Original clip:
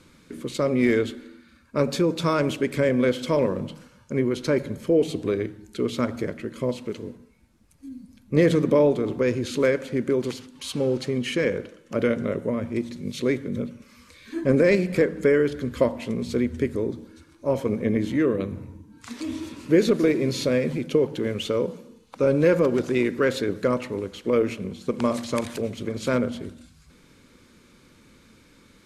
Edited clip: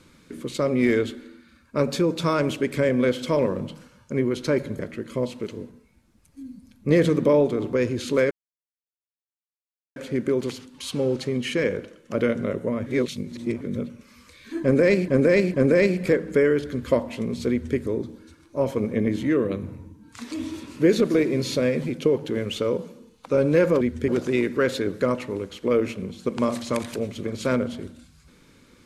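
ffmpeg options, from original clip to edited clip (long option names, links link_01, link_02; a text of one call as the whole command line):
ffmpeg -i in.wav -filter_complex "[0:a]asplit=9[link_01][link_02][link_03][link_04][link_05][link_06][link_07][link_08][link_09];[link_01]atrim=end=4.792[link_10];[link_02]atrim=start=6.248:end=9.77,asetpts=PTS-STARTPTS,afade=type=out:start_time=3.518:duration=0.004:curve=hsin,apad=pad_dur=1.65[link_11];[link_03]atrim=start=9.77:end=12.672,asetpts=PTS-STARTPTS,afade=type=in:duration=0.004:curve=hsin[link_12];[link_04]atrim=start=12.668:end=13.422,asetpts=PTS-STARTPTS,areverse[link_13];[link_05]atrim=start=13.418:end=14.892[link_14];[link_06]atrim=start=14.428:end=14.892[link_15];[link_07]atrim=start=14.428:end=22.702[link_16];[link_08]atrim=start=16.388:end=16.662[link_17];[link_09]atrim=start=22.698[link_18];[link_11][link_12]concat=n=2:v=0:a=1[link_19];[link_10][link_19]acrossfade=duration=0.004:curve1=hsin:curve2=hsin[link_20];[link_20][link_13]acrossfade=duration=0.004:curve1=hsin:curve2=hsin[link_21];[link_21][link_14]acrossfade=duration=0.004:curve1=hsin:curve2=hsin[link_22];[link_22][link_15]acrossfade=duration=0.004:curve1=hsin:curve2=hsin[link_23];[link_23][link_16]acrossfade=duration=0.004:curve1=hsin:curve2=hsin[link_24];[link_24][link_17]acrossfade=duration=0.004:curve1=hsin:curve2=hsin[link_25];[link_25][link_18]acrossfade=duration=0.004:curve1=hsin:curve2=hsin" out.wav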